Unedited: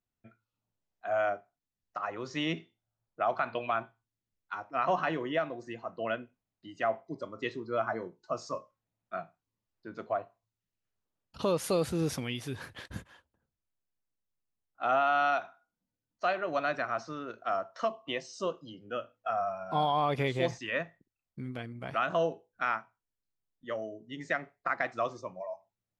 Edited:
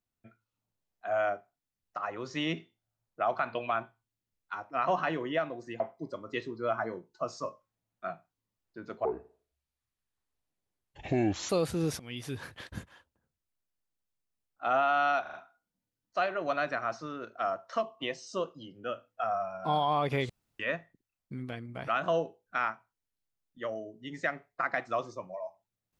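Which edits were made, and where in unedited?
5.8–6.89 cut
10.14–11.68 speed 63%
12.18–12.43 fade in, from -21.5 dB
15.4 stutter 0.04 s, 4 plays
20.36–20.66 room tone

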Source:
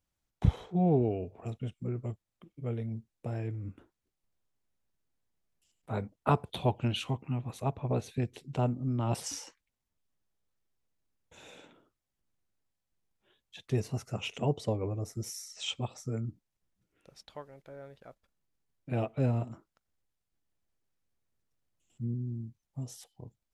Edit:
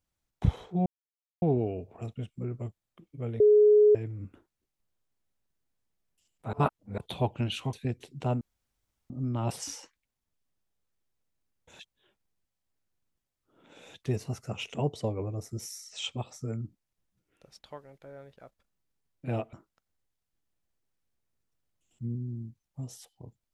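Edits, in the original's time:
0.86 insert silence 0.56 s
2.84–3.39 bleep 420 Hz -15.5 dBFS
5.97–6.42 reverse
7.17–8.06 cut
8.74 insert room tone 0.69 s
11.43–13.58 reverse
19.17–19.52 cut

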